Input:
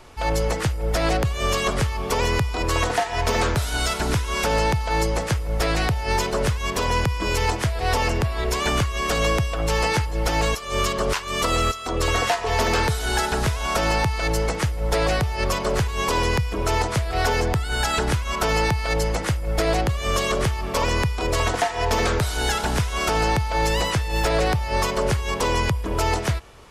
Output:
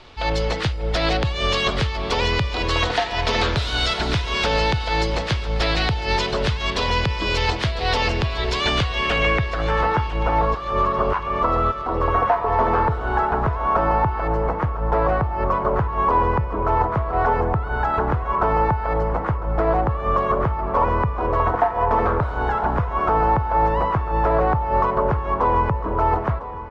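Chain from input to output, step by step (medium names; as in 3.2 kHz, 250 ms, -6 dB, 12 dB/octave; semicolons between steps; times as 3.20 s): low-pass sweep 3.9 kHz -> 1.1 kHz, 8.78–10.06 s; feedback delay 1002 ms, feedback 52%, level -15 dB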